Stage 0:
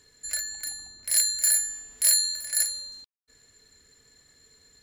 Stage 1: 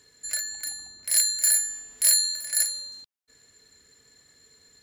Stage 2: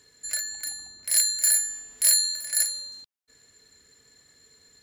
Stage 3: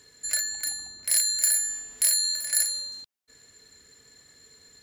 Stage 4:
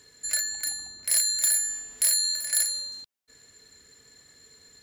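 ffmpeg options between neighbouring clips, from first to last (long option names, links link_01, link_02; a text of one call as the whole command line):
ffmpeg -i in.wav -af "highpass=frequency=92:poles=1,volume=1dB" out.wav
ffmpeg -i in.wav -af anull out.wav
ffmpeg -i in.wav -af "acompressor=threshold=-22dB:ratio=6,volume=3dB" out.wav
ffmpeg -i in.wav -af "asoftclip=type=hard:threshold=-15dB" out.wav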